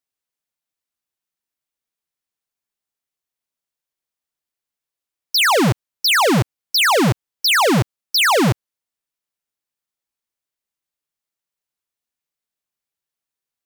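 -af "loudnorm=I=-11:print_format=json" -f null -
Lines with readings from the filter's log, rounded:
"input_i" : "-16.0",
"input_tp" : "-12.7",
"input_lra" : "6.0",
"input_thresh" : "-26.1",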